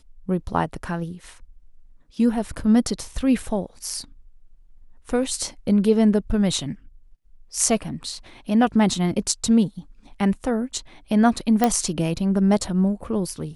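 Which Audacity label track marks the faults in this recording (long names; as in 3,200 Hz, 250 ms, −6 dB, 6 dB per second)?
11.640000	11.640000	click −5 dBFS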